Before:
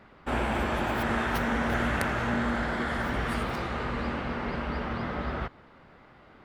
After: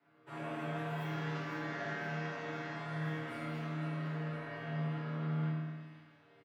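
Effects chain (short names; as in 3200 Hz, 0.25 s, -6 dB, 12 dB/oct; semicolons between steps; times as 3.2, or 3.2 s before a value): 1.04–2.75 CVSD 32 kbps; frequency shift +87 Hz; comb 7.1 ms, depth 95%; on a send: thin delay 0.511 s, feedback 60%, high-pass 3200 Hz, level -9.5 dB; on the sum: flange 0.42 Hz, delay 4.7 ms, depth 8.5 ms, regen -78%; 3.32–4.29 HPF 170 Hz 24 dB/oct; resonator bank D#2 major, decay 0.73 s; spring tank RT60 1.6 s, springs 32/51 ms, chirp 55 ms, DRR -3 dB; gain +1 dB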